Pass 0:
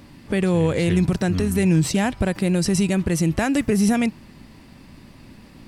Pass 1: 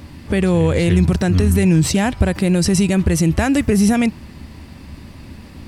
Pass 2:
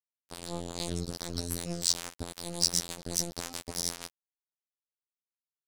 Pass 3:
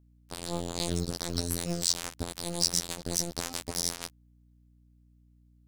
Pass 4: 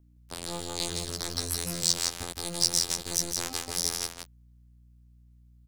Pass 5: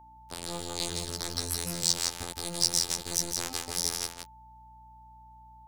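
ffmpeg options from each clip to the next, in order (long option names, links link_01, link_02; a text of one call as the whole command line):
ffmpeg -i in.wav -filter_complex "[0:a]equalizer=frequency=76:width=3.3:gain=13.5,asplit=2[link_01][link_02];[link_02]alimiter=limit=-15dB:level=0:latency=1:release=85,volume=2dB[link_03];[link_01][link_03]amix=inputs=2:normalize=0,volume=-1dB" out.wav
ffmpeg -i in.wav -af "highshelf=frequency=3300:width_type=q:width=3:gain=11.5,afftfilt=real='hypot(re,im)*cos(PI*b)':imag='0':win_size=2048:overlap=0.75,aeval=exprs='sgn(val(0))*max(abs(val(0))-0.158,0)':channel_layout=same,volume=-14.5dB" out.wav
ffmpeg -i in.wav -filter_complex "[0:a]asplit=2[link_01][link_02];[link_02]alimiter=limit=-11.5dB:level=0:latency=1:release=154,volume=2dB[link_03];[link_01][link_03]amix=inputs=2:normalize=0,acrusher=bits=6:mode=log:mix=0:aa=0.000001,aeval=exprs='val(0)+0.00158*(sin(2*PI*60*n/s)+sin(2*PI*2*60*n/s)/2+sin(2*PI*3*60*n/s)/3+sin(2*PI*4*60*n/s)/4+sin(2*PI*5*60*n/s)/5)':channel_layout=same,volume=-3.5dB" out.wav
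ffmpeg -i in.wav -filter_complex "[0:a]acrossover=split=620|2900[link_01][link_02][link_03];[link_01]asoftclip=type=tanh:threshold=-34dB[link_04];[link_04][link_02][link_03]amix=inputs=3:normalize=0,aecho=1:1:165:0.562,volume=2dB" out.wav
ffmpeg -i in.wav -af "aeval=exprs='val(0)+0.00316*sin(2*PI*880*n/s)':channel_layout=same,volume=-1dB" out.wav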